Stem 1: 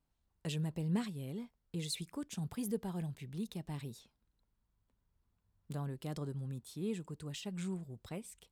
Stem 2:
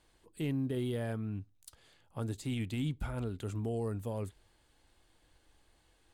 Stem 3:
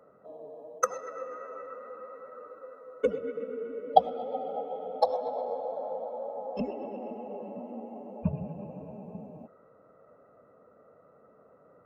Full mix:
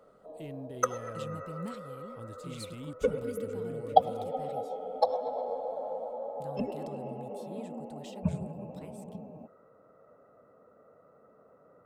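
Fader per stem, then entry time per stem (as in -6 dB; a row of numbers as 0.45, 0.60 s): -6.0, -9.5, -1.0 dB; 0.70, 0.00, 0.00 s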